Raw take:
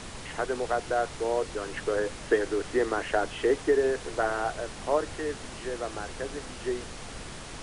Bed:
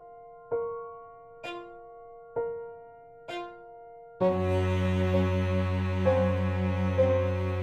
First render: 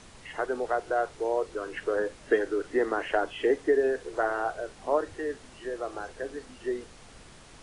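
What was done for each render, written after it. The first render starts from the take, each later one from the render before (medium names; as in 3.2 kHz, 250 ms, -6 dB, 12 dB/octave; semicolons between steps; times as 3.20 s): noise print and reduce 10 dB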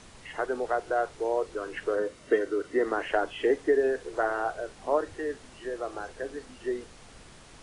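1.95–2.86 s: comb of notches 830 Hz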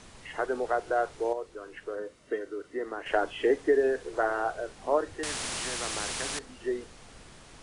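1.33–3.06 s: gain -8 dB; 5.23–6.39 s: spectrum-flattening compressor 4:1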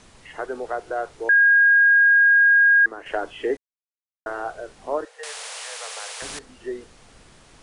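1.29–2.86 s: bleep 1.63 kHz -11.5 dBFS; 3.57–4.26 s: mute; 5.05–6.22 s: Chebyshev high-pass 440 Hz, order 8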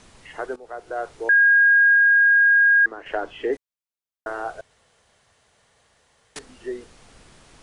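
0.56–1.08 s: fade in, from -17.5 dB; 1.95–3.53 s: distance through air 70 m; 4.61–6.36 s: room tone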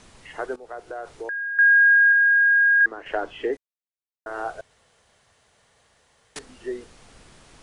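0.63–1.59 s: compression, threshold -29 dBFS; 2.12–2.81 s: distance through air 240 m; 3.45–4.39 s: dip -12.5 dB, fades 0.34 s quadratic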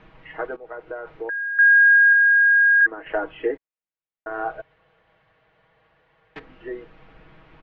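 low-pass 2.7 kHz 24 dB/octave; comb 6.3 ms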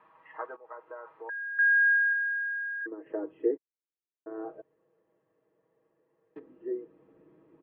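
band-pass sweep 1 kHz -> 350 Hz, 1.89–2.88 s; comb of notches 740 Hz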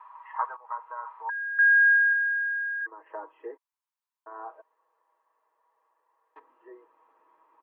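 resonant high-pass 980 Hz, resonance Q 6.4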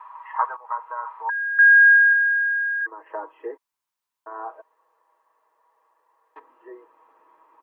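trim +6.5 dB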